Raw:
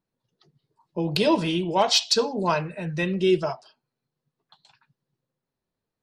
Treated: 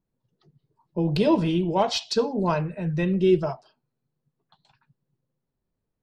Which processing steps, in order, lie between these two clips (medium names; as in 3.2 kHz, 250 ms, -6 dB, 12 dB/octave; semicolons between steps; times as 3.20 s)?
tilt EQ -2.5 dB/octave; trim -2.5 dB